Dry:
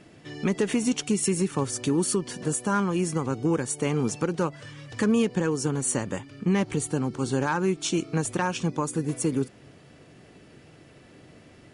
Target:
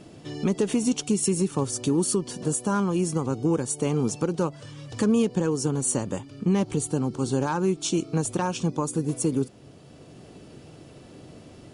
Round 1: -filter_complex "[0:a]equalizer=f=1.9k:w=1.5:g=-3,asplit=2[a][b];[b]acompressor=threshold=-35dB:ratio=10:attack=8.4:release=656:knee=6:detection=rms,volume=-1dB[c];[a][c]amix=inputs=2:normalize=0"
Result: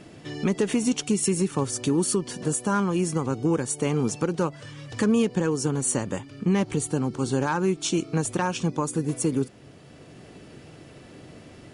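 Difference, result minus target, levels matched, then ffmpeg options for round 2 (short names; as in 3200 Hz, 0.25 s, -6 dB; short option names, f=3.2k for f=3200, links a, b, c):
2000 Hz band +4.5 dB
-filter_complex "[0:a]equalizer=f=1.9k:w=1.5:g=-10,asplit=2[a][b];[b]acompressor=threshold=-35dB:ratio=10:attack=8.4:release=656:knee=6:detection=rms,volume=-1dB[c];[a][c]amix=inputs=2:normalize=0"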